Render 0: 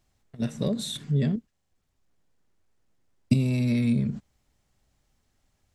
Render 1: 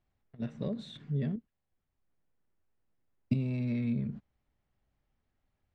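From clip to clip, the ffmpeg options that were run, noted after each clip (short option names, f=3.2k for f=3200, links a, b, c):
-af "lowpass=2.7k,volume=-8dB"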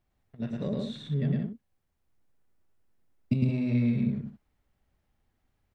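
-af "aecho=1:1:107.9|172:0.794|0.398,volume=2.5dB"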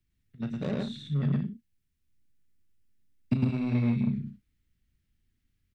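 -filter_complex "[0:a]acrossover=split=140|340|1600[a][b][c][d];[c]acrusher=bits=5:mix=0:aa=0.5[e];[a][b][e][d]amix=inputs=4:normalize=0,asplit=2[f][g];[g]adelay=35,volume=-12dB[h];[f][h]amix=inputs=2:normalize=0"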